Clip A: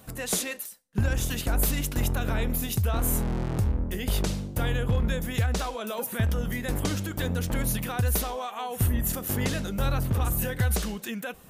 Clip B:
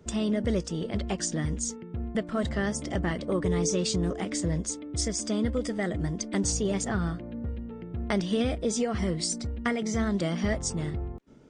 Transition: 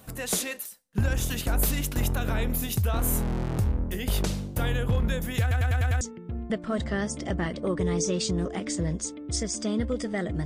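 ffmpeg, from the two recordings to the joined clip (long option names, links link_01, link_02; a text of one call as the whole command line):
ffmpeg -i cue0.wav -i cue1.wav -filter_complex "[0:a]apad=whole_dur=10.45,atrim=end=10.45,asplit=6[link_01][link_02][link_03][link_04][link_05][link_06];[link_01]atrim=end=5.512[link_07];[link_02]atrim=start=5.408:end=5.512[link_08];[link_03]atrim=start=5.408:end=5.512[link_09];[link_04]atrim=start=5.408:end=5.512[link_10];[link_05]atrim=start=5.408:end=5.512[link_11];[link_06]atrim=start=5.408:end=5.512[link_12];[1:a]atrim=start=1.658:end=6.1[link_13];[link_07][link_08]acrossfade=duration=0.004:curve1=hsin:curve2=hsin[link_14];[link_14][link_09]acrossfade=duration=0.004:curve1=hsin:curve2=hsin[link_15];[link_15][link_10]acrossfade=duration=0.004:curve1=hsin:curve2=hsin[link_16];[link_16][link_11]acrossfade=duration=0.004:curve1=hsin:curve2=hsin[link_17];[link_17][link_12]acrossfade=duration=0.004:curve1=hsin:curve2=hsin[link_18];[link_18][link_13]acrossfade=duration=0.004:curve1=hsin:curve2=hsin" out.wav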